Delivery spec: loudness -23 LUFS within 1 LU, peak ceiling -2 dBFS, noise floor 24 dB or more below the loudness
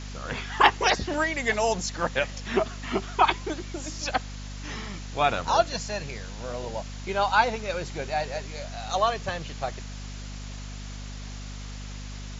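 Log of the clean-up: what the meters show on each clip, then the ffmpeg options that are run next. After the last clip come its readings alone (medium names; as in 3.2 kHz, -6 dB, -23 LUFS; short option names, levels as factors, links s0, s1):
hum 50 Hz; highest harmonic 250 Hz; hum level -35 dBFS; noise floor -38 dBFS; noise floor target -51 dBFS; loudness -27.0 LUFS; peak level -5.0 dBFS; loudness target -23.0 LUFS
-> -af "bandreject=f=50:t=h:w=4,bandreject=f=100:t=h:w=4,bandreject=f=150:t=h:w=4,bandreject=f=200:t=h:w=4,bandreject=f=250:t=h:w=4"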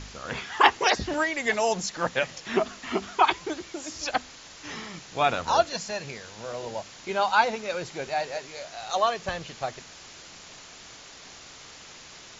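hum not found; noise floor -47 dBFS; noise floor target -51 dBFS
-> -af "afftdn=nr=6:nf=-47"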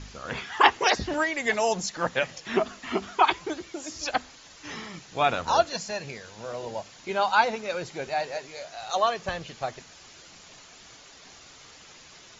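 noise floor -50 dBFS; noise floor target -51 dBFS
-> -af "afftdn=nr=6:nf=-50"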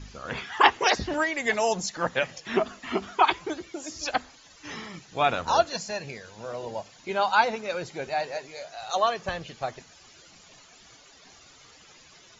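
noise floor -54 dBFS; loudness -27.0 LUFS; peak level -5.0 dBFS; loudness target -23.0 LUFS
-> -af "volume=1.58,alimiter=limit=0.794:level=0:latency=1"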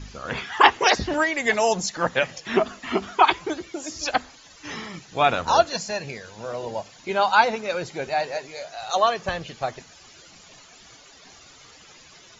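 loudness -23.0 LUFS; peak level -2.0 dBFS; noise floor -50 dBFS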